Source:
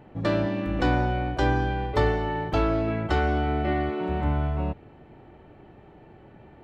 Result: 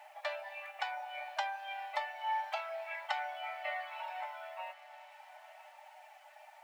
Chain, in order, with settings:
reverb reduction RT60 1.6 s
downward compressor 12 to 1, threshold −30 dBFS, peak gain reduction 13 dB
bit reduction 11 bits
Chebyshev high-pass with heavy ripple 590 Hz, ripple 9 dB
on a send: feedback delay with all-pass diffusion 1,054 ms, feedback 40%, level −14.5 dB
on the sum: level +6 dB

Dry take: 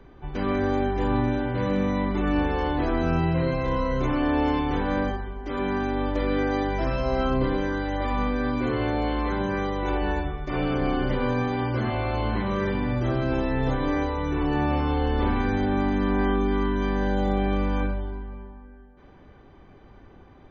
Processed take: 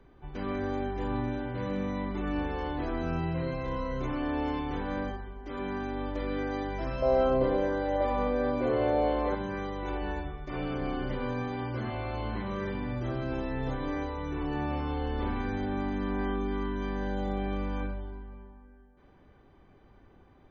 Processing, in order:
0:07.02–0:09.35: parametric band 580 Hz +13.5 dB 1 octave
level −8 dB

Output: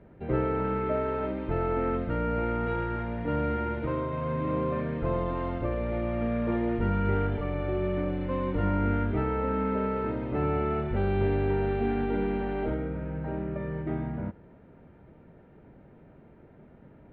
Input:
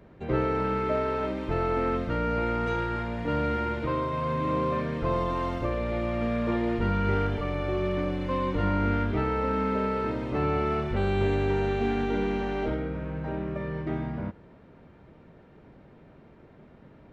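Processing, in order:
high-frequency loss of the air 410 metres
notch filter 1,100 Hz, Q 8.8

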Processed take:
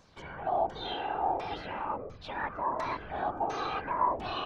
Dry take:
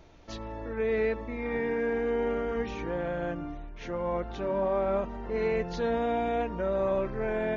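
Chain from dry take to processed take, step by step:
auto-filter low-pass saw down 0.84 Hz 350–3,800 Hz
change of speed 1.7×
random phases in short frames
level −6.5 dB

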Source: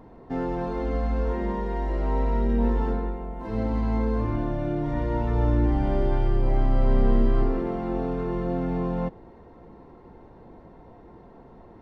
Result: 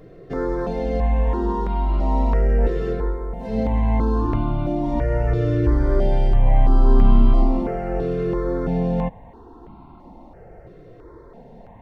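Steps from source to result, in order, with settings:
step-sequenced phaser 3 Hz 240–1,800 Hz
level +7.5 dB

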